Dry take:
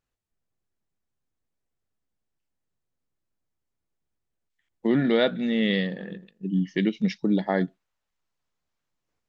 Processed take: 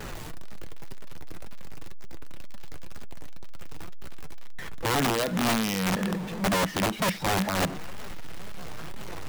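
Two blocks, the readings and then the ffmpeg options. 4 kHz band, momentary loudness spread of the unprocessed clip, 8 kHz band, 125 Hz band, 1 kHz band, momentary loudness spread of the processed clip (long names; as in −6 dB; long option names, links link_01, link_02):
+3.5 dB, 11 LU, can't be measured, 0.0 dB, +8.5 dB, 18 LU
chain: -filter_complex "[0:a]aeval=exprs='val(0)+0.5*0.0335*sgn(val(0))':channel_layout=same,acrossover=split=110[link_01][link_02];[link_02]alimiter=limit=-18dB:level=0:latency=1:release=109[link_03];[link_01][link_03]amix=inputs=2:normalize=0,highshelf=frequency=3200:gain=-11,asplit=2[link_04][link_05];[link_05]acrusher=bits=5:mix=0:aa=0.000001,volume=-7.5dB[link_06];[link_04][link_06]amix=inputs=2:normalize=0,flanger=delay=4.6:depth=2.2:regen=57:speed=2:shape=triangular,aeval=exprs='(mod(12.6*val(0)+1,2)-1)/12.6':channel_layout=same,volume=2.5dB"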